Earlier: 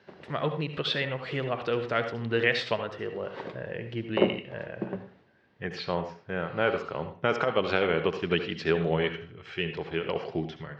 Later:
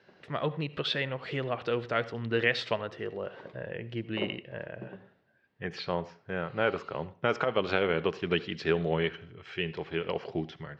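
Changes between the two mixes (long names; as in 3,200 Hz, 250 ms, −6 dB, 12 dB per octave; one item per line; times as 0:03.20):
speech: send −10.5 dB
background −11.5 dB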